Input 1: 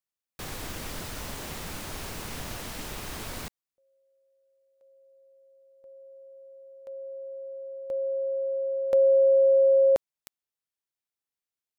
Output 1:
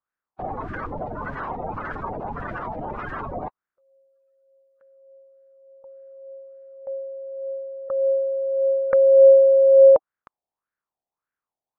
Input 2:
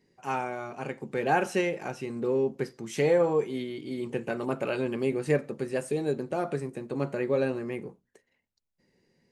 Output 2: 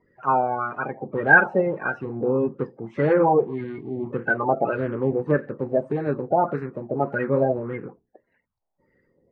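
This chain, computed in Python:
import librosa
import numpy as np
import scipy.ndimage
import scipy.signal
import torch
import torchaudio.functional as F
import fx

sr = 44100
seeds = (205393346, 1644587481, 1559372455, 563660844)

y = fx.spec_quant(x, sr, step_db=30)
y = fx.filter_lfo_lowpass(y, sr, shape='sine', hz=1.7, low_hz=710.0, high_hz=1600.0, q=4.8)
y = y * 10.0 ** (3.5 / 20.0)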